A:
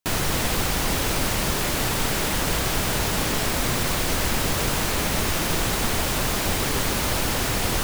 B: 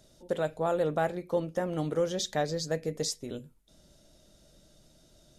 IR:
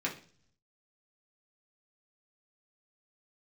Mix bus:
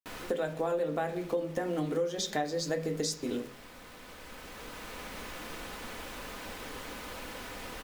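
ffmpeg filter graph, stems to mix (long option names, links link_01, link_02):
-filter_complex "[0:a]bass=frequency=250:gain=-8,treble=frequency=4000:gain=-8,bandreject=frequency=740:width=13,aecho=1:1:4:0.39,volume=-16dB,asplit=2[link_01][link_02];[link_02]volume=-9.5dB[link_03];[1:a]equalizer=frequency=110:width_type=o:width=0.77:gain=-7,aeval=exprs='val(0)*gte(abs(val(0)),0.00376)':channel_layout=same,volume=1dB,asplit=3[link_04][link_05][link_06];[link_05]volume=-3.5dB[link_07];[link_06]apad=whole_len=345727[link_08];[link_01][link_08]sidechaincompress=threshold=-45dB:ratio=8:attack=5.4:release=1390[link_09];[2:a]atrim=start_sample=2205[link_10];[link_07][link_10]afir=irnorm=-1:irlink=0[link_11];[link_03]aecho=0:1:181:1[link_12];[link_09][link_04][link_11][link_12]amix=inputs=4:normalize=0,acompressor=threshold=-29dB:ratio=5"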